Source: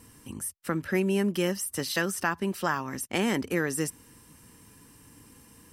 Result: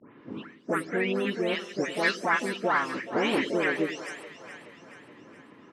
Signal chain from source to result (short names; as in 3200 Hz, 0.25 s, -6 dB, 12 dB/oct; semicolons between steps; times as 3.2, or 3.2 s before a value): spectral delay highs late, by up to 0.329 s; low-pass opened by the level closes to 1700 Hz, open at -25.5 dBFS; harmonic-percussive split percussive +6 dB; in parallel at +2 dB: compressor, threshold -36 dBFS, peak gain reduction 16.5 dB; on the sum: harmoniser +4 st -6 dB; BPF 240–3700 Hz; on a send: split-band echo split 500 Hz, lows 93 ms, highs 0.425 s, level -12 dB; on the sum: gain -3.5 dB